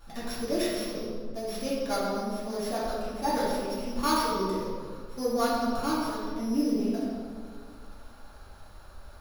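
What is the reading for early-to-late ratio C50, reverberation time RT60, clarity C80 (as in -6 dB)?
-2.0 dB, 2.1 s, 1.0 dB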